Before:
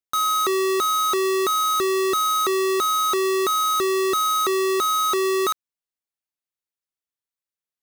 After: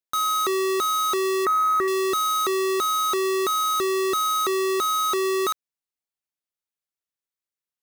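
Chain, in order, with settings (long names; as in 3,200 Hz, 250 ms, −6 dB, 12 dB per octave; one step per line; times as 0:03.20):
0:01.45–0:01.88: high shelf with overshoot 2,400 Hz −9.5 dB, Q 3
level −2 dB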